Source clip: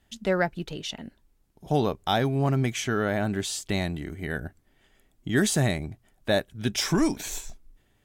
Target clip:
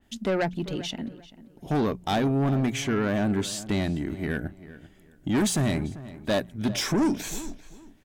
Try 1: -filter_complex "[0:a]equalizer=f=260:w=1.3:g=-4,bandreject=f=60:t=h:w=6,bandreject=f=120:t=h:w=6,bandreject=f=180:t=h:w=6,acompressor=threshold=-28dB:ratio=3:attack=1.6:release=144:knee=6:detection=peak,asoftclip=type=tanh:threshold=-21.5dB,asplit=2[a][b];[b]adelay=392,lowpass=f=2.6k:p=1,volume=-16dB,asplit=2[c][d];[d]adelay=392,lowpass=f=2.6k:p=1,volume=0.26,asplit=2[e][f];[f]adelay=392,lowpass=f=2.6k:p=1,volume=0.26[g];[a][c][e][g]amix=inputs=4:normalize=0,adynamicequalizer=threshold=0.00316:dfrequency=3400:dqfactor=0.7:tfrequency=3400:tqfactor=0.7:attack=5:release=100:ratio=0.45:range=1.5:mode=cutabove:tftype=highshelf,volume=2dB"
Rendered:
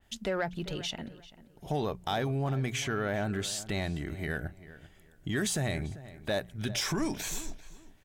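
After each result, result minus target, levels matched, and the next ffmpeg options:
compressor: peak gain reduction +8.5 dB; 250 Hz band -3.5 dB
-filter_complex "[0:a]equalizer=f=260:w=1.3:g=-4,bandreject=f=60:t=h:w=6,bandreject=f=120:t=h:w=6,bandreject=f=180:t=h:w=6,asoftclip=type=tanh:threshold=-21.5dB,asplit=2[a][b];[b]adelay=392,lowpass=f=2.6k:p=1,volume=-16dB,asplit=2[c][d];[d]adelay=392,lowpass=f=2.6k:p=1,volume=0.26,asplit=2[e][f];[f]adelay=392,lowpass=f=2.6k:p=1,volume=0.26[g];[a][c][e][g]amix=inputs=4:normalize=0,adynamicequalizer=threshold=0.00316:dfrequency=3400:dqfactor=0.7:tfrequency=3400:tqfactor=0.7:attack=5:release=100:ratio=0.45:range=1.5:mode=cutabove:tftype=highshelf,volume=2dB"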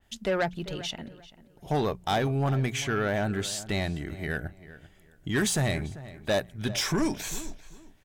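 250 Hz band -4.0 dB
-filter_complex "[0:a]equalizer=f=260:w=1.3:g=6.5,bandreject=f=60:t=h:w=6,bandreject=f=120:t=h:w=6,bandreject=f=180:t=h:w=6,asoftclip=type=tanh:threshold=-21.5dB,asplit=2[a][b];[b]adelay=392,lowpass=f=2.6k:p=1,volume=-16dB,asplit=2[c][d];[d]adelay=392,lowpass=f=2.6k:p=1,volume=0.26,asplit=2[e][f];[f]adelay=392,lowpass=f=2.6k:p=1,volume=0.26[g];[a][c][e][g]amix=inputs=4:normalize=0,adynamicequalizer=threshold=0.00316:dfrequency=3400:dqfactor=0.7:tfrequency=3400:tqfactor=0.7:attack=5:release=100:ratio=0.45:range=1.5:mode=cutabove:tftype=highshelf,volume=2dB"

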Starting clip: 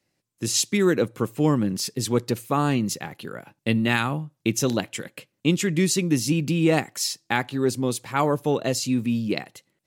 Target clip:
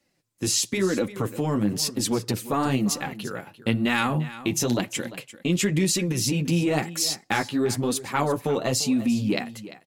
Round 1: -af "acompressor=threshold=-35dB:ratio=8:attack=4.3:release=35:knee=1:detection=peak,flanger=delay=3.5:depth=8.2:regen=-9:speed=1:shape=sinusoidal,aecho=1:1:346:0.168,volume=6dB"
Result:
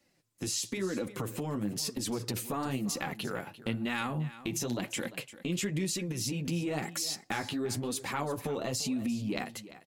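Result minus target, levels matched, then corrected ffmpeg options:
compressor: peak gain reduction +10 dB
-af "acompressor=threshold=-23.5dB:ratio=8:attack=4.3:release=35:knee=1:detection=peak,flanger=delay=3.5:depth=8.2:regen=-9:speed=1:shape=sinusoidal,aecho=1:1:346:0.168,volume=6dB"

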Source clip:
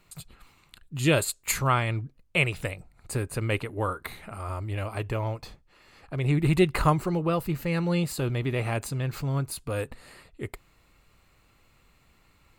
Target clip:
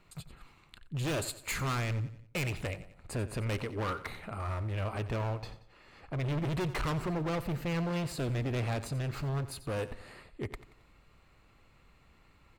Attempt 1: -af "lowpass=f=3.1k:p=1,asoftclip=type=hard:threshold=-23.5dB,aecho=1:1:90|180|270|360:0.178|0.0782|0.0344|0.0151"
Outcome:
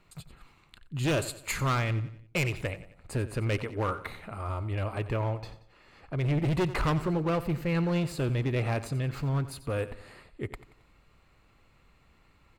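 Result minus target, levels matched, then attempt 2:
hard clip: distortion -5 dB
-af "lowpass=f=3.1k:p=1,asoftclip=type=hard:threshold=-30.5dB,aecho=1:1:90|180|270|360:0.178|0.0782|0.0344|0.0151"

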